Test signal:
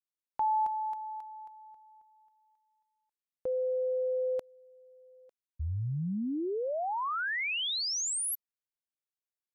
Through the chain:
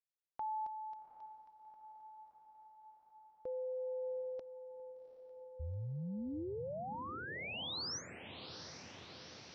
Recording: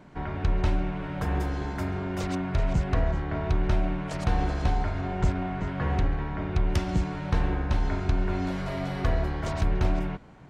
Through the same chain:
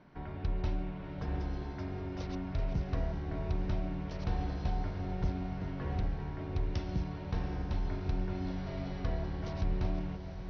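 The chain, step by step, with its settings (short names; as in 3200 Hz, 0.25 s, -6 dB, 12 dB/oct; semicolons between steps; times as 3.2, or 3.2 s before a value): Chebyshev low-pass 5800 Hz, order 6; dynamic EQ 1500 Hz, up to -6 dB, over -48 dBFS, Q 0.75; on a send: diffused feedback echo 0.774 s, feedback 70%, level -10 dB; on the sum: gain -7.5 dB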